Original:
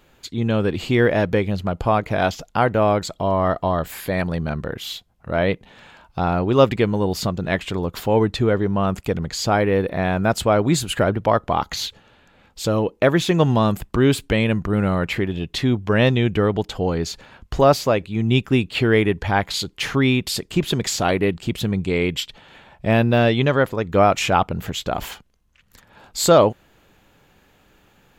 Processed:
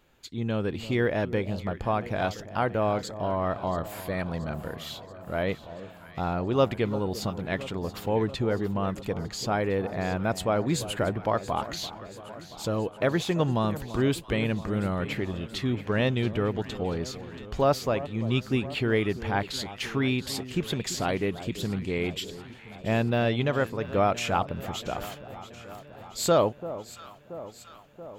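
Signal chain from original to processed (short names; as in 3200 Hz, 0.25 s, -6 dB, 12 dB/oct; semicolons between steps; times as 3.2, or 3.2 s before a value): echo with dull and thin repeats by turns 0.34 s, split 1100 Hz, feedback 80%, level -13.5 dB; gain -8.5 dB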